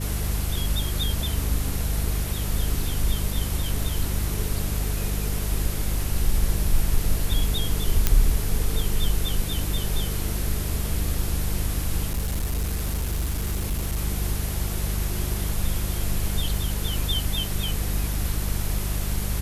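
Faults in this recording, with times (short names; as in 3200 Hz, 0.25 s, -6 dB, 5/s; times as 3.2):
hum 50 Hz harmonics 4 -28 dBFS
8.07 pop -3 dBFS
12.06–13.99 clipped -21.5 dBFS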